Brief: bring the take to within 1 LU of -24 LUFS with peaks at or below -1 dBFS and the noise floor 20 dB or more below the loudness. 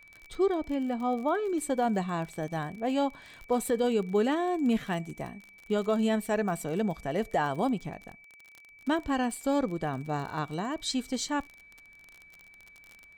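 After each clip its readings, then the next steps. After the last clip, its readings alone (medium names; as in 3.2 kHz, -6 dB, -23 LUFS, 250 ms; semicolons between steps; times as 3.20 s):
tick rate 37 per s; steady tone 2.3 kHz; tone level -52 dBFS; loudness -30.0 LUFS; peak level -16.5 dBFS; loudness target -24.0 LUFS
-> de-click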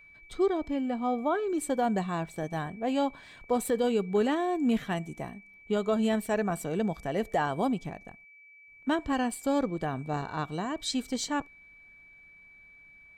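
tick rate 0.46 per s; steady tone 2.3 kHz; tone level -52 dBFS
-> band-stop 2.3 kHz, Q 30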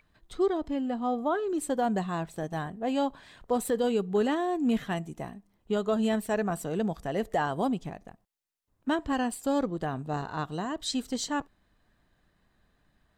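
steady tone not found; loudness -30.0 LUFS; peak level -16.5 dBFS; loudness target -24.0 LUFS
-> trim +6 dB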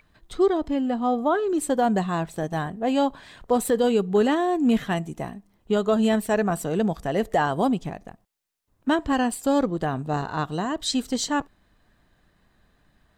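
loudness -24.0 LUFS; peak level -10.5 dBFS; noise floor -65 dBFS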